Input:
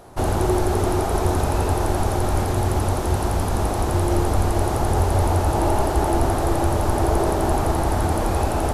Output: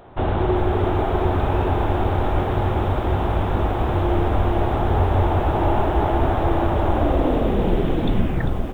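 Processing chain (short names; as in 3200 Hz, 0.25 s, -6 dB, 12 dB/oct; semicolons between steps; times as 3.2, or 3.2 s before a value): tape stop at the end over 1.92 s; downsampling 8000 Hz; lo-fi delay 0.397 s, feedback 80%, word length 8-bit, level -10.5 dB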